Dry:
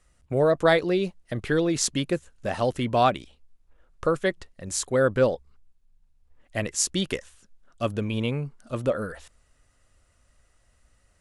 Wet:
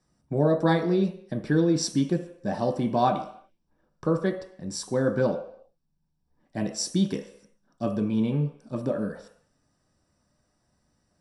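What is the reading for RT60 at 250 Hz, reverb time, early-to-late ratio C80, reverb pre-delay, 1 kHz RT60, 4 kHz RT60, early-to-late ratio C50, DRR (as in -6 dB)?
0.50 s, 0.65 s, 12.5 dB, 3 ms, 0.65 s, 0.65 s, 9.5 dB, 3.0 dB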